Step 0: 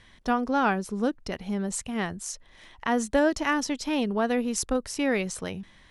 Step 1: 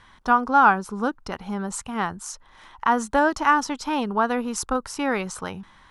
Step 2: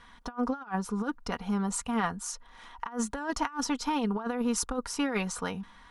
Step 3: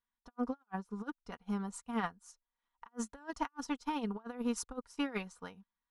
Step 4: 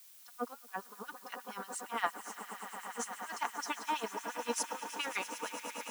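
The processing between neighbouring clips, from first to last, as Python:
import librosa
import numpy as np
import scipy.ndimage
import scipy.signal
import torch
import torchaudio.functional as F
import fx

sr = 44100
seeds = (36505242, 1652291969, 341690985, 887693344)

y1 = fx.band_shelf(x, sr, hz=1100.0, db=11.0, octaves=1.1)
y2 = y1 + 0.59 * np.pad(y1, (int(4.2 * sr / 1000.0), 0))[:len(y1)]
y2 = fx.over_compress(y2, sr, threshold_db=-23.0, ratio=-0.5)
y2 = y2 * librosa.db_to_amplitude(-6.5)
y3 = fx.upward_expand(y2, sr, threshold_db=-50.0, expansion=2.5)
y3 = y3 * librosa.db_to_amplitude(-4.0)
y4 = fx.echo_swell(y3, sr, ms=108, loudest=8, wet_db=-14.5)
y4 = fx.filter_lfo_highpass(y4, sr, shape='sine', hz=8.6, low_hz=460.0, high_hz=2800.0, q=0.94)
y4 = fx.dmg_noise_colour(y4, sr, seeds[0], colour='blue', level_db=-62.0)
y4 = y4 * librosa.db_to_amplitude(5.0)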